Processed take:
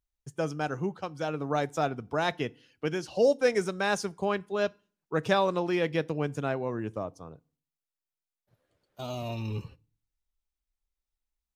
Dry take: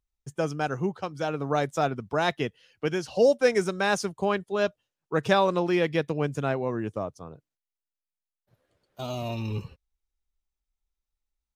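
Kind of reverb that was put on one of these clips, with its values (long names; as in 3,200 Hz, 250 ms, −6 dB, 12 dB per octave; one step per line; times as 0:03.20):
feedback delay network reverb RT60 0.42 s, low-frequency decay 1.35×, high-frequency decay 0.85×, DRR 20 dB
level −3 dB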